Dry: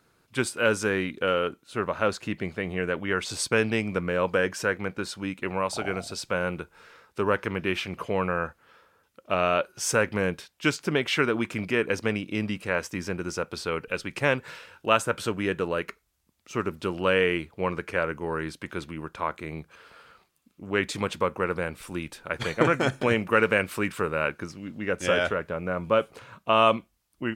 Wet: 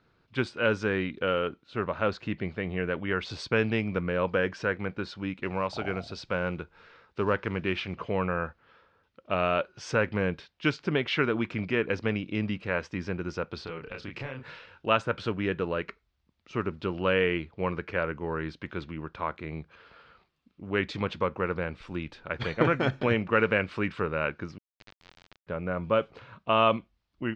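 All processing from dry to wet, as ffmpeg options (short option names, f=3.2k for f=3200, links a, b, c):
-filter_complex "[0:a]asettb=1/sr,asplit=3[a][b][c];[a]atrim=end=5.344[d];[b]atrim=start=5.34:end=7.96,asetpts=PTS-STARTPTS,afade=t=in:d=0.004:c=qsin,afade=t=out:st=2.616:d=0.004:c=qsin,highshelf=f=8.3k:g=3,acrusher=bits=7:mode=log:mix=0:aa=0.000001[e];[c]atrim=start=7.956[f];[d][e]acrossfade=d=0.004:c1=hsin:c2=qsin[g];[g][f]acrossfade=d=0.004:c1=qsin:c2=hsin,asettb=1/sr,asplit=3[h][i][j];[h]atrim=end=13.644[k];[i]atrim=start=13.64:end=14.47,asetpts=PTS-STARTPTS,afade=t=in:d=0.004:c=qsin,afade=t=out:st=0.826:d=0.004:c=qsin,acompressor=threshold=-32dB:ratio=10:attack=3.2:release=140:knee=1:detection=peak,asplit=2[l][m];[m]adelay=30,volume=-3dB[n];[l][n]amix=inputs=2:normalize=0,atrim=end_sample=36603[o];[j]atrim=start=14.466[p];[k][o]acrossfade=d=0.004:c1=hsin:c2=qsin[q];[q][p]acrossfade=d=0.004:c1=qsin:c2=hsin,asettb=1/sr,asplit=3[r][s][t];[r]atrim=end=24.584[u];[s]atrim=start=24.58:end=25.47,asetpts=PTS-STARTPTS,afade=t=in:d=0.004:c=qsin,afade=t=out:st=0.886:d=0.004:c=qsin,highpass=880,acompressor=threshold=-42dB:ratio=6:attack=3.2:release=140:knee=1:detection=peak,acrusher=bits=3:dc=4:mix=0:aa=0.000001[v];[t]atrim=start=25.466[w];[u][v]acrossfade=d=0.004:c1=hsin:c2=qsin[x];[x][w]acrossfade=d=0.004:c1=qsin:c2=hsin,lowpass=f=4.6k:w=0.5412,lowpass=f=4.6k:w=1.3066,lowshelf=f=160:g=6,volume=-3dB"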